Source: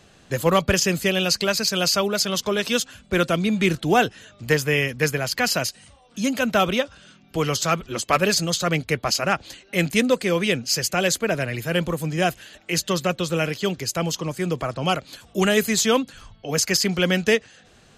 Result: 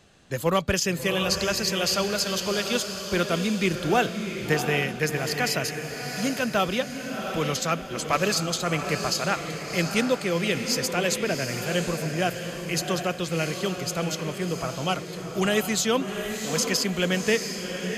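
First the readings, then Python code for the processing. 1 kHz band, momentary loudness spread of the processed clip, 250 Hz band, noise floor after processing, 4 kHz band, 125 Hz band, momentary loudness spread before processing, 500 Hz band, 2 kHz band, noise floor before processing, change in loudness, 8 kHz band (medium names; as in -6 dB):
-3.5 dB, 6 LU, -3.5 dB, -36 dBFS, -3.5 dB, -3.5 dB, 7 LU, -3.5 dB, -3.5 dB, -54 dBFS, -3.5 dB, -3.5 dB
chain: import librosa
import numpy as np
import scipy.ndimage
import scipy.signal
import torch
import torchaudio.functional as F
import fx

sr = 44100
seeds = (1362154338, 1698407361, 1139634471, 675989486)

y = fx.echo_diffused(x, sr, ms=715, feedback_pct=47, wet_db=-6.5)
y = F.gain(torch.from_numpy(y), -4.5).numpy()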